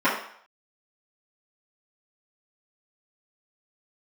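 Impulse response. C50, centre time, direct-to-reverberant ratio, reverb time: 5.0 dB, 36 ms, -13.0 dB, 0.60 s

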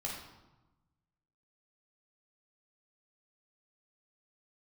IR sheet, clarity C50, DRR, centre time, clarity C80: 2.5 dB, -3.0 dB, 49 ms, 5.5 dB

